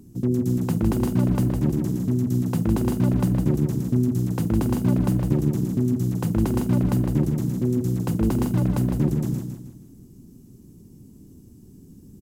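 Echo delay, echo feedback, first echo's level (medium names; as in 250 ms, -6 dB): 157 ms, 39%, -6.0 dB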